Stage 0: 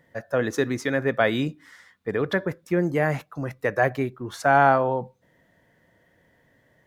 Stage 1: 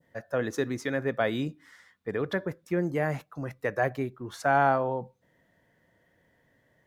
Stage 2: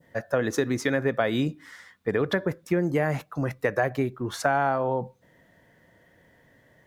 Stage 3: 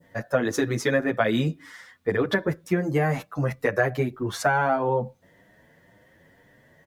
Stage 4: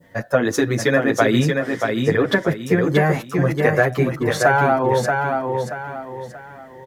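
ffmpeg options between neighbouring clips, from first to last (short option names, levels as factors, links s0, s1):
-af "adynamicequalizer=threshold=0.0158:dfrequency=2000:dqfactor=0.75:tfrequency=2000:tqfactor=0.75:attack=5:release=100:ratio=0.375:range=2.5:mode=cutabove:tftype=bell,volume=0.562"
-af "acompressor=threshold=0.0398:ratio=6,volume=2.51"
-filter_complex "[0:a]asplit=2[s0][s1];[s1]adelay=8.5,afreqshift=1.9[s2];[s0][s2]amix=inputs=2:normalize=1,volume=1.78"
-af "aecho=1:1:631|1262|1893|2524:0.596|0.208|0.073|0.0255,volume=1.88"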